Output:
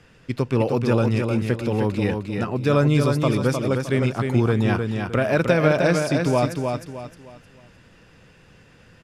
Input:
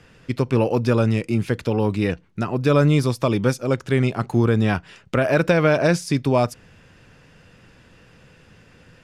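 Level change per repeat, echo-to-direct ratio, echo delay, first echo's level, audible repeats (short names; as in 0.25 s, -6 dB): -9.5 dB, -4.5 dB, 0.308 s, -5.0 dB, 4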